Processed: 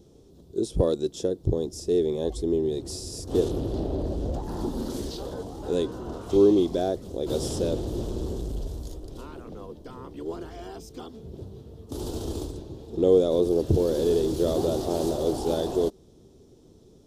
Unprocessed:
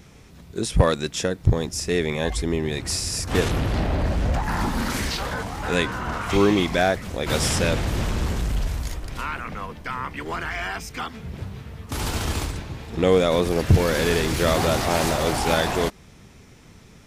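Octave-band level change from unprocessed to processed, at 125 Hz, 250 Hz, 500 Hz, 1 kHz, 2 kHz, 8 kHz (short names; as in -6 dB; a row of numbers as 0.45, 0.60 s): -8.0, -1.5, -0.5, -12.0, -24.5, -11.0 dB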